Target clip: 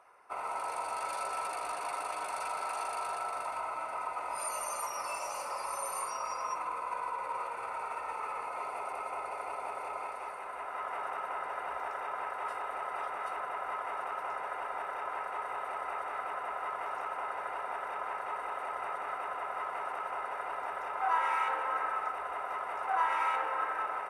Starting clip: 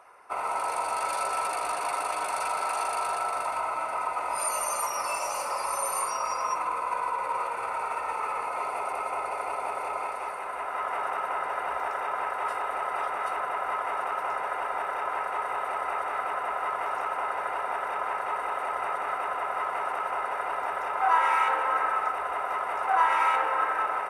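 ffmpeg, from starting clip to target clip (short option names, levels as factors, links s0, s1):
-af "highshelf=f=11000:g=-3.5,volume=0.447"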